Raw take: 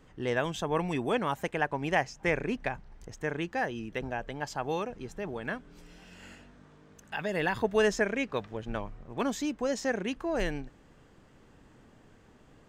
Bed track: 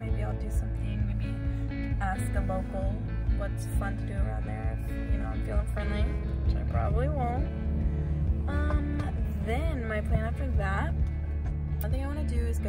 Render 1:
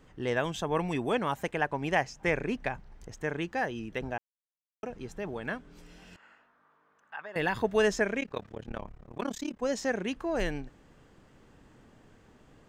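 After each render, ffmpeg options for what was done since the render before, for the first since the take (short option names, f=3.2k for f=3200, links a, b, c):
-filter_complex "[0:a]asettb=1/sr,asplit=3[a][b][c];[a]atrim=end=6.164[d];[b]atrim=start=6.16:end=7.36,asetpts=PTS-STARTPTS,afade=t=in:d=0.004:c=qsin,afade=t=out:st=1.196:d=0.004:c=qsin,bandpass=f=1.2k:t=q:w=2.1[e];[c]atrim=start=7.356[f];[d][e]acrossfade=d=0.004:c1=hsin:c2=qsin[g];[g][f]acrossfade=d=0.004:c1=qsin:c2=hsin,asplit=3[h][i][j];[h]afade=t=out:st=8.19:d=0.02[k];[i]tremolo=f=35:d=0.974,afade=t=in:st=8.19:d=0.02,afade=t=out:st=9.61:d=0.02[l];[j]afade=t=in:st=9.61:d=0.02[m];[k][l][m]amix=inputs=3:normalize=0,asplit=3[n][o][p];[n]atrim=end=4.18,asetpts=PTS-STARTPTS,afade=t=out:st=4.176:d=0.004:c=hsin[q];[o]atrim=start=4.18:end=4.83,asetpts=PTS-STARTPTS,volume=0[r];[p]atrim=start=4.83,asetpts=PTS-STARTPTS,afade=t=in:d=0.004:c=hsin[s];[q][r][s]concat=n=3:v=0:a=1"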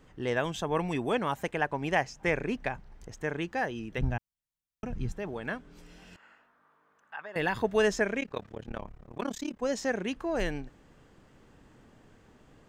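-filter_complex "[0:a]asplit=3[a][b][c];[a]afade=t=out:st=3.97:d=0.02[d];[b]asubboost=boost=8:cutoff=160,afade=t=in:st=3.97:d=0.02,afade=t=out:st=5.11:d=0.02[e];[c]afade=t=in:st=5.11:d=0.02[f];[d][e][f]amix=inputs=3:normalize=0"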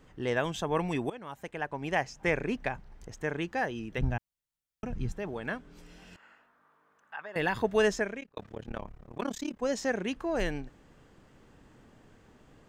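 -filter_complex "[0:a]asplit=3[a][b][c];[a]atrim=end=1.1,asetpts=PTS-STARTPTS,afade=t=out:st=1.096:d=0.004:c=hsin:silence=0.112202[d];[b]atrim=start=1.1:end=8.37,asetpts=PTS-STARTPTS,afade=t=in:d=1.13:silence=0.112202,afade=t=out:st=6.77:d=0.5[e];[c]atrim=start=8.37,asetpts=PTS-STARTPTS,afade=t=in:d=0.004:c=hsin[f];[d][e][f]concat=n=3:v=0:a=1"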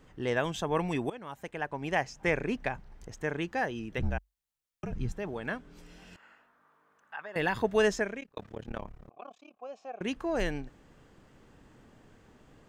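-filter_complex "[0:a]asettb=1/sr,asplit=3[a][b][c];[a]atrim=end=4.004[d];[b]atrim=start=4:end=4.92,asetpts=PTS-STARTPTS,afade=t=in:d=0.004:c=qsin,afade=t=out:st=0.916:d=0.004:c=qsin,afreqshift=-49[e];[c]atrim=start=4.916[f];[d][e]acrossfade=d=0.004:c1=hsin:c2=qsin[g];[g][f]acrossfade=d=0.004:c1=qsin:c2=hsin,asettb=1/sr,asplit=3[h][i][j];[h]atrim=end=9.094[k];[i]atrim=start=9.09:end=10.01,asetpts=PTS-STARTPTS,afade=t=in:d=0.004:c=qsin,afade=t=out:st=0.916:d=0.004:c=qsin,asplit=3[l][m][n];[l]bandpass=f=730:t=q:w=8,volume=0dB[o];[m]bandpass=f=1.09k:t=q:w=8,volume=-6dB[p];[n]bandpass=f=2.44k:t=q:w=8,volume=-9dB[q];[o][p][q]amix=inputs=3:normalize=0[r];[j]atrim=start=10.006[s];[k][r]acrossfade=d=0.004:c1=hsin:c2=qsin[t];[t][s]acrossfade=d=0.004:c1=qsin:c2=hsin"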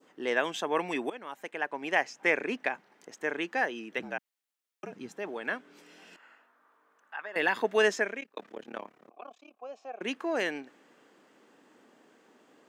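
-af "highpass=f=250:w=0.5412,highpass=f=250:w=1.3066,adynamicequalizer=threshold=0.00447:dfrequency=2100:dqfactor=0.92:tfrequency=2100:tqfactor=0.92:attack=5:release=100:ratio=0.375:range=2.5:mode=boostabove:tftype=bell"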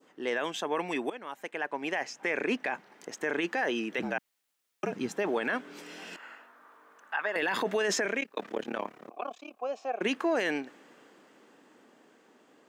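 -af "dynaudnorm=f=490:g=11:m=11.5dB,alimiter=limit=-20dB:level=0:latency=1:release=15"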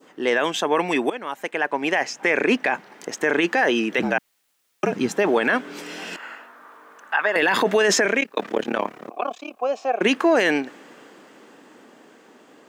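-af "volume=10.5dB"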